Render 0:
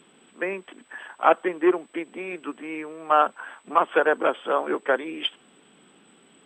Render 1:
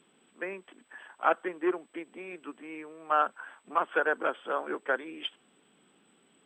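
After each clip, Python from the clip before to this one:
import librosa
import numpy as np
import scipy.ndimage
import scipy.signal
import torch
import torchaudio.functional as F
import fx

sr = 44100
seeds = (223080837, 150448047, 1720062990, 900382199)

y = fx.dynamic_eq(x, sr, hz=1500.0, q=3.2, threshold_db=-37.0, ratio=4.0, max_db=6)
y = F.gain(torch.from_numpy(y), -9.0).numpy()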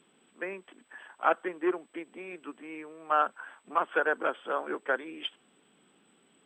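y = x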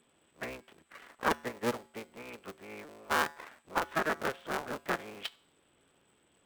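y = fx.cycle_switch(x, sr, every=3, mode='inverted')
y = fx.comb_fb(y, sr, f0_hz=77.0, decay_s=0.55, harmonics='odd', damping=0.0, mix_pct=40)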